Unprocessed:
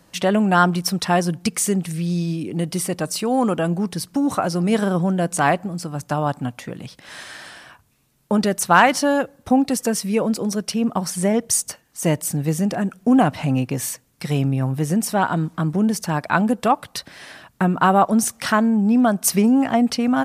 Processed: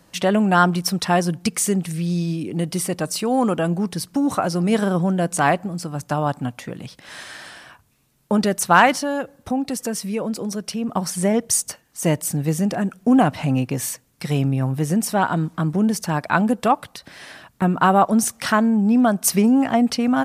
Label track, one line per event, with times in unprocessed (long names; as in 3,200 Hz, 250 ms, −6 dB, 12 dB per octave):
8.950000	10.890000	downward compressor 1.5 to 1, threshold −29 dBFS
16.920000	17.620000	downward compressor 10 to 1, threshold −33 dBFS